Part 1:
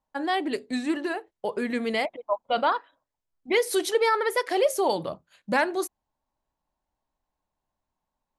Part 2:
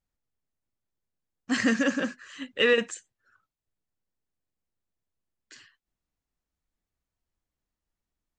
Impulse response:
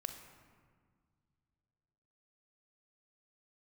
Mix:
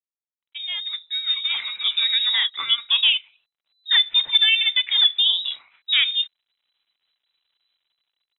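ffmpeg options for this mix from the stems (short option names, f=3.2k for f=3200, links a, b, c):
-filter_complex "[0:a]lowpass=f=2.4k:w=0.5412,lowpass=f=2.4k:w=1.3066,lowshelf=f=300:g=3.5,dynaudnorm=f=280:g=7:m=10.5dB,adelay=400,volume=-4dB[a];[1:a]bandreject=f=50:t=h:w=6,bandreject=f=100:t=h:w=6,bandreject=f=150:t=h:w=6,bandreject=f=200:t=h:w=6,bandreject=f=250:t=h:w=6,bandreject=f=300:t=h:w=6,bandreject=f=350:t=h:w=6,bandreject=f=400:t=h:w=6,acompressor=threshold=-30dB:ratio=6,volume=2dB[b];[a][b]amix=inputs=2:normalize=0,acrusher=bits=11:mix=0:aa=0.000001,lowpass=f=3.4k:t=q:w=0.5098,lowpass=f=3.4k:t=q:w=0.6013,lowpass=f=3.4k:t=q:w=0.9,lowpass=f=3.4k:t=q:w=2.563,afreqshift=-4000"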